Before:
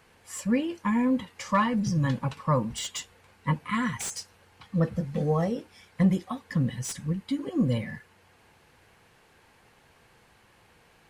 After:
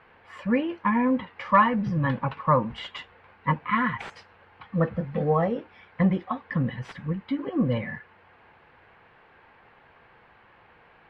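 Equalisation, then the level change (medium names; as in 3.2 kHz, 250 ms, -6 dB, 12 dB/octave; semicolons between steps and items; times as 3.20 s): low-pass 1.1 kHz 6 dB/octave; distance through air 410 m; tilt shelf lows -9 dB, about 670 Hz; +8.0 dB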